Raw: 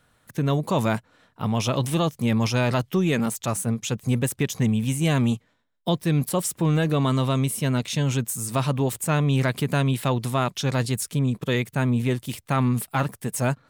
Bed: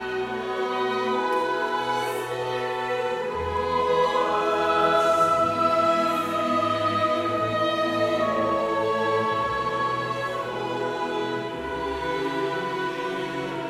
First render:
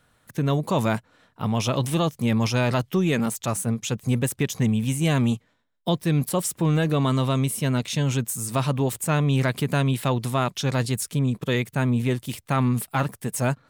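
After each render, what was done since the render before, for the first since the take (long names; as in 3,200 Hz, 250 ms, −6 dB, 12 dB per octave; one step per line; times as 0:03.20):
no processing that can be heard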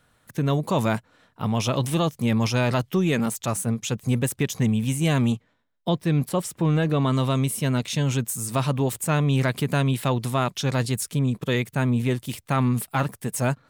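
0:05.32–0:07.13: high-shelf EQ 5,300 Hz −8.5 dB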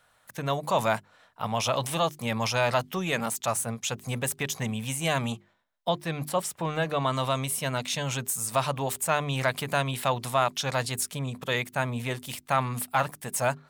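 low shelf with overshoot 480 Hz −8.5 dB, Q 1.5
mains-hum notches 50/100/150/200/250/300/350/400 Hz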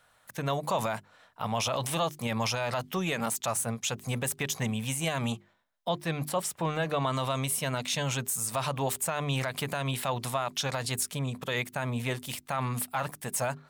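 brickwall limiter −19 dBFS, peak gain reduction 9 dB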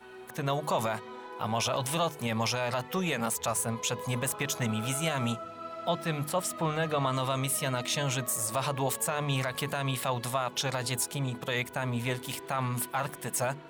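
mix in bed −19.5 dB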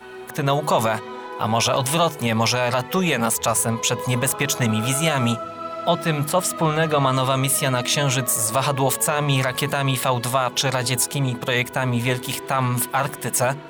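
level +10 dB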